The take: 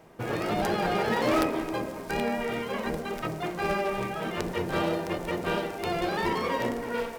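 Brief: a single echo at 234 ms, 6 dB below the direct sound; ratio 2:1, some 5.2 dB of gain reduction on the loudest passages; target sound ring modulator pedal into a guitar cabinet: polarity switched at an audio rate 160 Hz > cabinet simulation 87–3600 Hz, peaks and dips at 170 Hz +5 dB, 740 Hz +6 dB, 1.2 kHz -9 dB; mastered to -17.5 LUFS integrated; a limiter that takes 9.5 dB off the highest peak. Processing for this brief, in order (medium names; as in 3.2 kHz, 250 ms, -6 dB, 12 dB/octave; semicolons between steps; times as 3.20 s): compression 2:1, threshold -30 dBFS; peak limiter -24 dBFS; delay 234 ms -6 dB; polarity switched at an audio rate 160 Hz; cabinet simulation 87–3600 Hz, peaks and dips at 170 Hz +5 dB, 740 Hz +6 dB, 1.2 kHz -9 dB; trim +15 dB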